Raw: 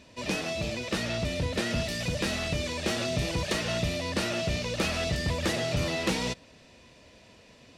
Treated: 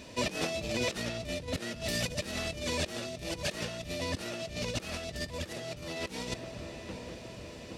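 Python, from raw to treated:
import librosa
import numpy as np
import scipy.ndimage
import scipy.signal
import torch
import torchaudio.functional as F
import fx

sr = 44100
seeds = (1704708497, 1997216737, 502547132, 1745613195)

y = fx.peak_eq(x, sr, hz=420.0, db=3.0, octaves=1.2)
y = fx.echo_filtered(y, sr, ms=817, feedback_pct=66, hz=1700.0, wet_db=-21.5)
y = fx.over_compress(y, sr, threshold_db=-34.0, ratio=-0.5)
y = fx.high_shelf(y, sr, hz=8300.0, db=7.5)
y = F.gain(torch.from_numpy(y), -1.0).numpy()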